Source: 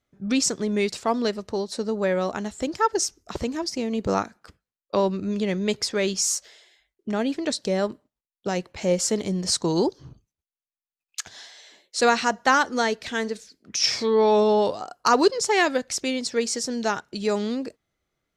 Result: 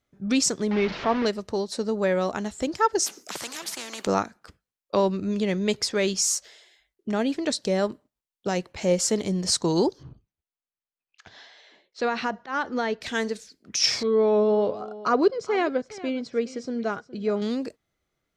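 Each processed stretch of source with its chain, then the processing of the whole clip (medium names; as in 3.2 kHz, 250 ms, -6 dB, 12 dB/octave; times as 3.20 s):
0.71–1.26 s: one-bit delta coder 32 kbps, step -23.5 dBFS + low-pass 2.6 kHz
3.06–4.07 s: high-pass 230 Hz 24 dB/octave + spectrum-flattening compressor 4:1
10.03–13.01 s: compression 4:1, threshold -20 dBFS + slow attack 103 ms + distance through air 210 m
14.03–17.42 s: tape spacing loss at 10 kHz 29 dB + comb of notches 900 Hz + delay 415 ms -17.5 dB
whole clip: none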